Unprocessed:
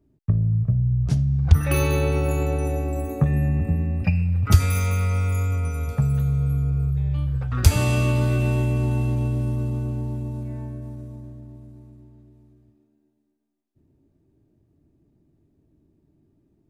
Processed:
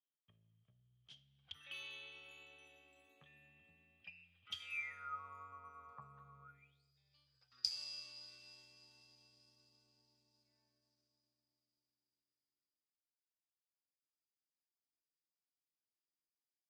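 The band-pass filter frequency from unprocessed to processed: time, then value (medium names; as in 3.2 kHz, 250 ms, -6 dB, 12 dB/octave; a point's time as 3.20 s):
band-pass filter, Q 19
4.62 s 3.2 kHz
5.21 s 1.1 kHz
6.42 s 1.1 kHz
6.84 s 4.9 kHz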